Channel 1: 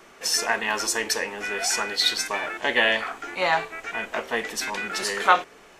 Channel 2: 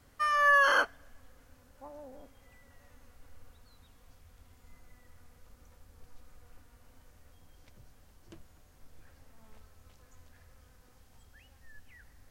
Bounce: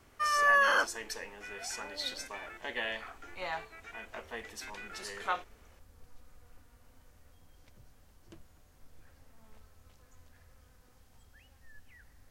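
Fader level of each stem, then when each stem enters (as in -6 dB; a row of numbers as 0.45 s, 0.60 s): -15.5 dB, -1.5 dB; 0.00 s, 0.00 s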